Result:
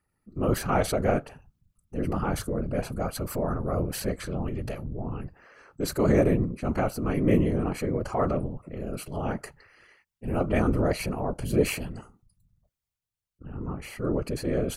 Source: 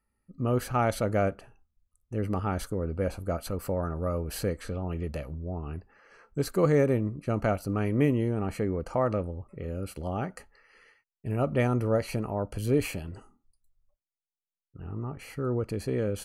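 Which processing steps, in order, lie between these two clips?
tempo change 1.1×
transient designer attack −4 dB, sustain +3 dB
random phases in short frames
level +2.5 dB

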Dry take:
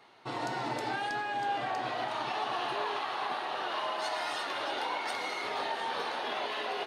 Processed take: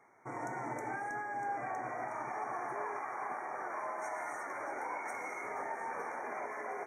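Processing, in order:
linear-phase brick-wall band-stop 2,400–5,500 Hz
level −5 dB

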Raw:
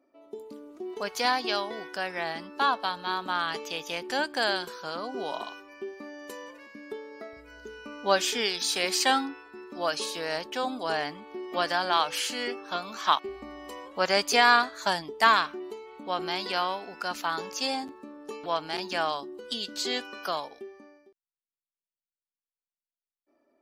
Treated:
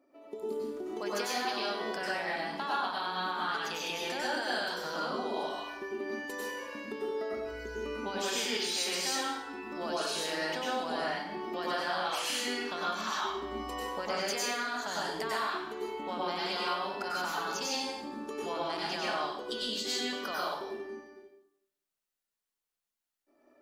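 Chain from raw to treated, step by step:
brickwall limiter −16.5 dBFS, peak gain reduction 10.5 dB
downward compressor 3 to 1, threshold −39 dBFS, peak gain reduction 12.5 dB
dense smooth reverb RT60 0.78 s, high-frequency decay 0.85×, pre-delay 85 ms, DRR −6 dB

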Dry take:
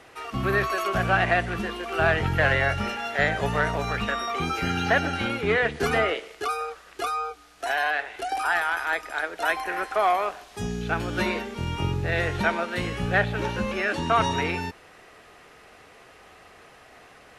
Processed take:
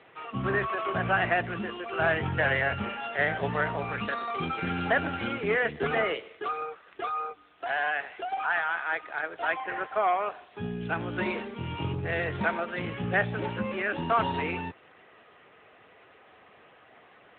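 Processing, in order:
level −3 dB
AMR narrowband 10.2 kbit/s 8,000 Hz

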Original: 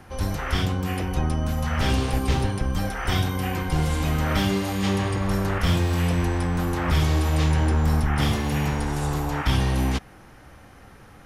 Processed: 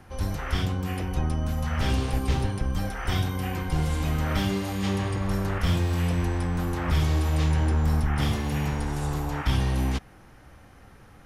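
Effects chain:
low-shelf EQ 140 Hz +3.5 dB
level −4.5 dB

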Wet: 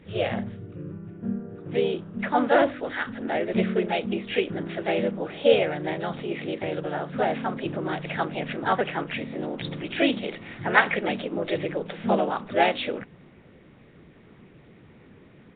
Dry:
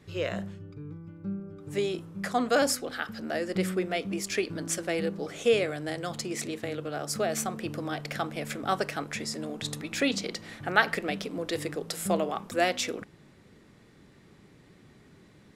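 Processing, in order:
pitch-shifted copies added +3 semitones −2 dB, +4 semitones −12 dB
level +2.5 dB
Nellymoser 16 kbit/s 8,000 Hz

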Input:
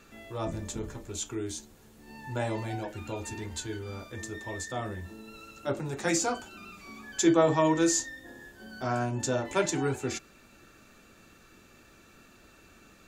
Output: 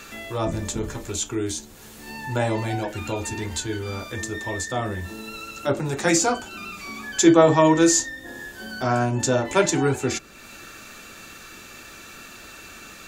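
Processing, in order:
one half of a high-frequency compander encoder only
level +8 dB

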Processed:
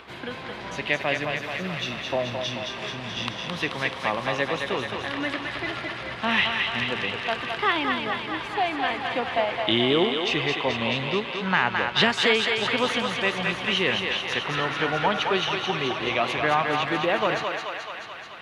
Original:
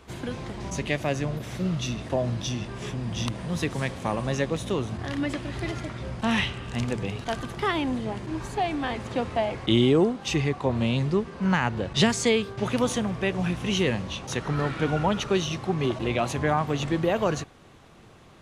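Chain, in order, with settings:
spectral tilt +4.5 dB per octave
upward compression, threshold −41 dBFS
high-frequency loss of the air 390 metres
feedback echo with a high-pass in the loop 216 ms, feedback 74%, high-pass 510 Hz, level −3.5 dB
level +5 dB

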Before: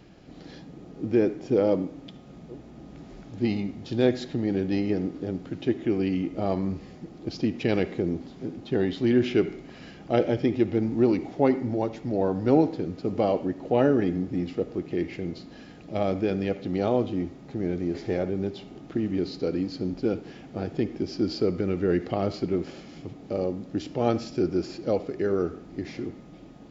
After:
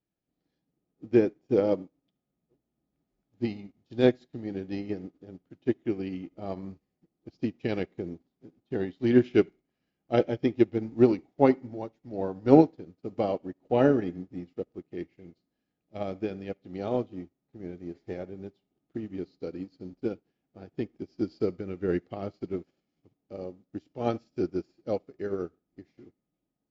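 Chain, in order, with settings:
expander for the loud parts 2.5 to 1, over −44 dBFS
level +4.5 dB

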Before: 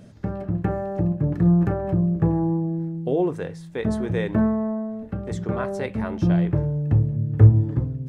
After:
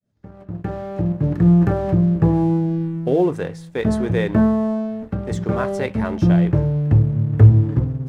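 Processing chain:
fade in at the beginning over 1.54 s
leveller curve on the samples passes 1
level +1 dB

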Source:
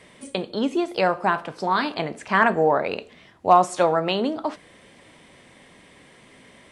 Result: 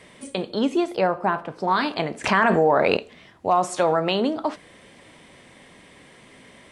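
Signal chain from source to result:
0:00.96–0:01.68: high-shelf EQ 2,100 Hz −11 dB
brickwall limiter −11.5 dBFS, peak gain reduction 7 dB
0:02.24–0:02.97: envelope flattener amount 70%
level +1.5 dB

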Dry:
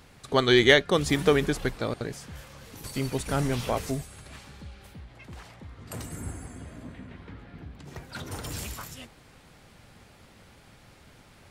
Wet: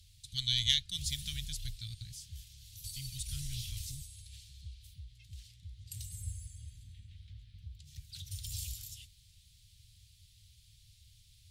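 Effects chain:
harmonic generator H 3 −23 dB, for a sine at −1.5 dBFS
elliptic band-stop filter 100–3,500 Hz, stop band 80 dB

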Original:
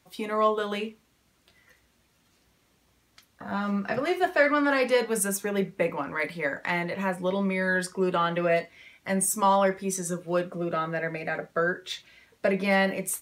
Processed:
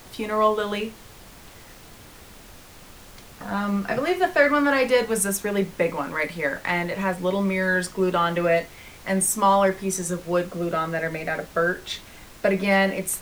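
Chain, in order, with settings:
pitch vibrato 1.5 Hz 8.5 cents
background noise pink −49 dBFS
level +3.5 dB

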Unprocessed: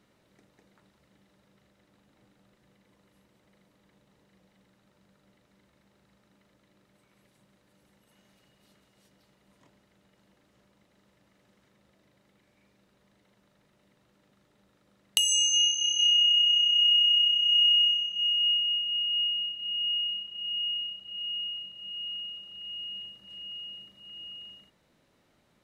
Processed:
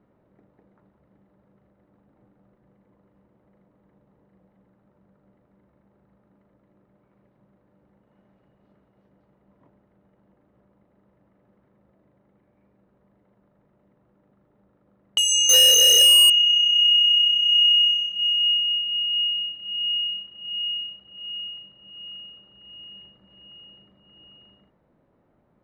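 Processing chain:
0:15.49–0:16.30: leveller curve on the samples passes 5
low-pass that shuts in the quiet parts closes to 1,000 Hz, open at −22 dBFS
level +4.5 dB

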